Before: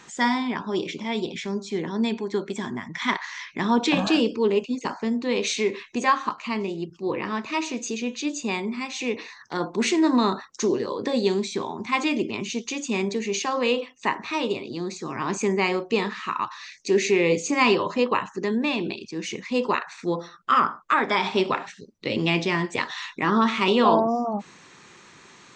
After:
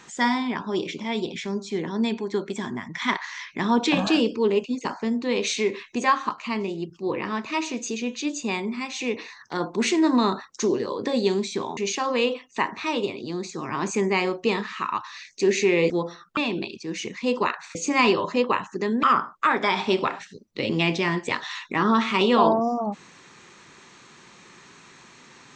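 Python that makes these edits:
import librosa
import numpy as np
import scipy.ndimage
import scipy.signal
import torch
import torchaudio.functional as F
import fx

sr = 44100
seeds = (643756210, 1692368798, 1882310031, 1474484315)

y = fx.edit(x, sr, fx.cut(start_s=11.77, length_s=1.47),
    fx.swap(start_s=17.37, length_s=1.28, other_s=20.03, other_length_s=0.47), tone=tone)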